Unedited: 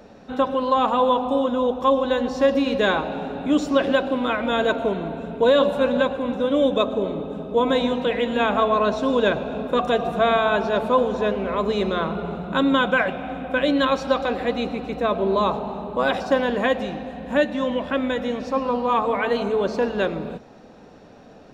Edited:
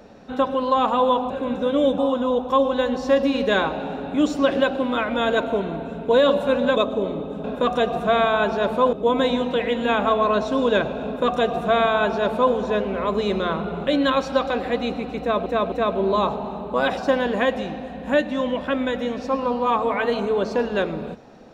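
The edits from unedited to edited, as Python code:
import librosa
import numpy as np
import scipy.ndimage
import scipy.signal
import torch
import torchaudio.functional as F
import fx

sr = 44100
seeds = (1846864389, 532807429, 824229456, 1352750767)

y = fx.edit(x, sr, fx.move(start_s=6.08, length_s=0.68, to_s=1.3),
    fx.duplicate(start_s=9.56, length_s=1.49, to_s=7.44),
    fx.cut(start_s=12.38, length_s=1.24),
    fx.repeat(start_s=14.95, length_s=0.26, count=3), tone=tone)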